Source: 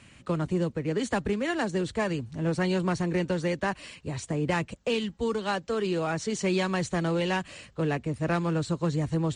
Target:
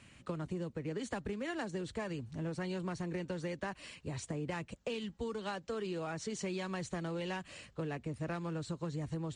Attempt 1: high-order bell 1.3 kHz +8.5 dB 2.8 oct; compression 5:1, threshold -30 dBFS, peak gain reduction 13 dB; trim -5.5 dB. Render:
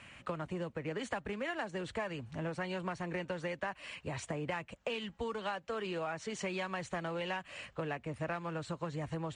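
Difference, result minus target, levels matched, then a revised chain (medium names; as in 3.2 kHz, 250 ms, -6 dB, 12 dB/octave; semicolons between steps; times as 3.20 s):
1 kHz band +3.5 dB
compression 5:1, threshold -30 dBFS, peak gain reduction 8 dB; trim -5.5 dB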